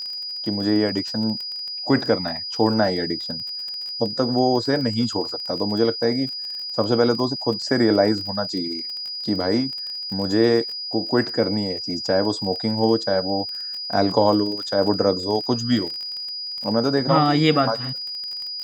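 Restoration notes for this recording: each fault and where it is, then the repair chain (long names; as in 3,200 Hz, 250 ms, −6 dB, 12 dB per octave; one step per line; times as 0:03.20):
surface crackle 28 per second −29 dBFS
whistle 4,900 Hz −28 dBFS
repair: click removal
notch filter 4,900 Hz, Q 30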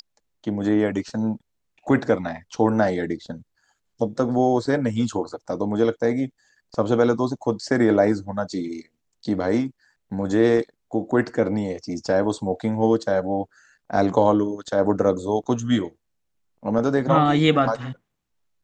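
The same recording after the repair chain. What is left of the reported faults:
none of them is left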